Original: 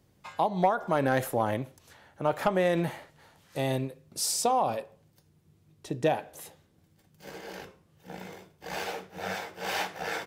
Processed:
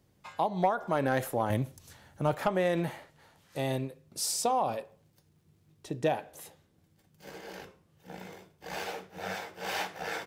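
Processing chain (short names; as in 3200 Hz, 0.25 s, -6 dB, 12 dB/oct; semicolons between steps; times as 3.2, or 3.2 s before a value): 1.5–2.35 tone controls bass +9 dB, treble +8 dB; 4.76–5.99 crackle 350/s -65 dBFS; gain -2.5 dB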